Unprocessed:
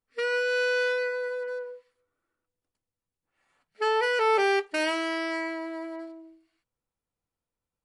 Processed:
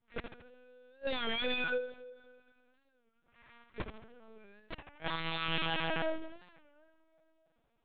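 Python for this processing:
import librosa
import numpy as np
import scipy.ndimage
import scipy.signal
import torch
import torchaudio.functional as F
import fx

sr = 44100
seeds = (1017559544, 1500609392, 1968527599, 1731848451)

p1 = x + 0.84 * np.pad(x, (int(4.3 * sr / 1000.0), 0))[:len(x)]
p2 = fx.rider(p1, sr, range_db=4, speed_s=0.5)
p3 = p1 + F.gain(torch.from_numpy(p2), 2.0).numpy()
p4 = fx.gate_flip(p3, sr, shuts_db=-13.0, range_db=-42)
p5 = 10.0 ** (-28.5 / 20.0) * (np.abs((p4 / 10.0 ** (-28.5 / 20.0) + 3.0) % 4.0 - 2.0) - 1.0)
p6 = fx.echo_feedback(p5, sr, ms=73, feedback_pct=48, wet_db=-8.0)
p7 = fx.rev_plate(p6, sr, seeds[0], rt60_s=2.7, hf_ratio=0.7, predelay_ms=0, drr_db=16.5)
p8 = fx.lpc_vocoder(p7, sr, seeds[1], excitation='pitch_kept', order=8)
y = fx.record_warp(p8, sr, rpm=33.33, depth_cents=160.0)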